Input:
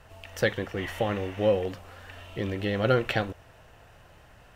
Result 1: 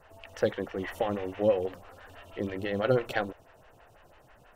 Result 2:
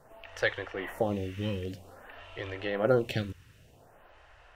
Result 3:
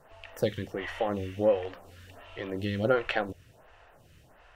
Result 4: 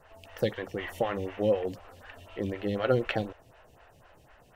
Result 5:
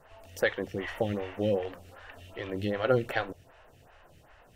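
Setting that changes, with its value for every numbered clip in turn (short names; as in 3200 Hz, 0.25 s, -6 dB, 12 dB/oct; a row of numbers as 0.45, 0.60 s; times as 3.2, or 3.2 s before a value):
photocell phaser, rate: 6.1, 0.52, 1.4, 4, 2.6 Hz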